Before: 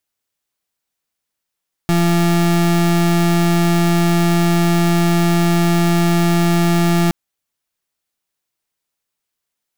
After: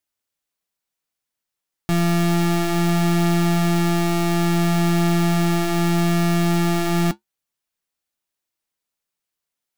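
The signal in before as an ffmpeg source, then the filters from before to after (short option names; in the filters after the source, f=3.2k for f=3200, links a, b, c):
-f lavfi -i "aevalsrc='0.2*(2*lt(mod(171*t,1),0.34)-1)':d=5.22:s=44100"
-af "flanger=delay=3.2:depth=6.8:regen=-64:speed=0.24:shape=sinusoidal"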